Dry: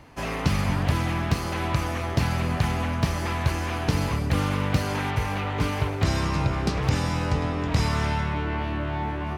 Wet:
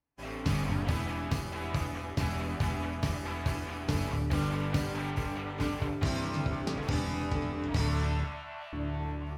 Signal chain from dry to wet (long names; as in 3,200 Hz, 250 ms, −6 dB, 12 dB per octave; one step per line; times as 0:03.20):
downward expander −25 dBFS
0:08.24–0:08.73: Chebyshev high-pass filter 580 Hz, order 10
convolution reverb RT60 0.50 s, pre-delay 4 ms, DRR 6.5 dB
level −7.5 dB